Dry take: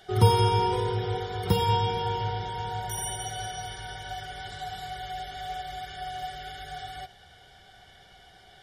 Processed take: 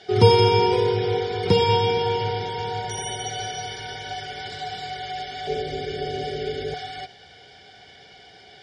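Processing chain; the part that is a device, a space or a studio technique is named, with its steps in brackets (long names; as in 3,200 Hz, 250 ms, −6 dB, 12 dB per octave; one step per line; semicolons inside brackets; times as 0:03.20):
0:05.47–0:06.74: low shelf with overshoot 630 Hz +10 dB, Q 3
car door speaker (loudspeaker in its box 97–7,300 Hz, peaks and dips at 270 Hz +6 dB, 440 Hz +8 dB, 1,200 Hz −6 dB, 2,400 Hz +8 dB, 4,800 Hz +8 dB)
level +4 dB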